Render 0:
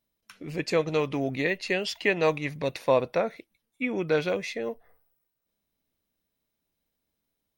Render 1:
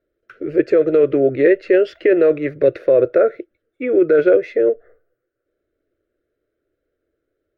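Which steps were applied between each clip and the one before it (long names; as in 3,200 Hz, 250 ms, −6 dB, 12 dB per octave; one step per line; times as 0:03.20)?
drawn EQ curve 130 Hz 0 dB, 200 Hz −14 dB, 350 Hz +14 dB, 600 Hz +9 dB, 920 Hz −21 dB, 1,400 Hz +8 dB, 2,300 Hz −7 dB, 7,800 Hz −25 dB
in parallel at +2.5 dB: compressor whose output falls as the input rises −16 dBFS, ratio −0.5
on the sum: level −2.5 dB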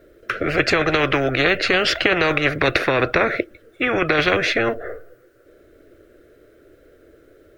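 every bin compressed towards the loudest bin 4 to 1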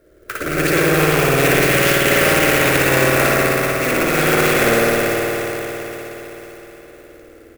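single-tap delay 440 ms −9.5 dB
convolution reverb RT60 4.3 s, pre-delay 52 ms, DRR −8 dB
converter with an unsteady clock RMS 0.04 ms
level −4.5 dB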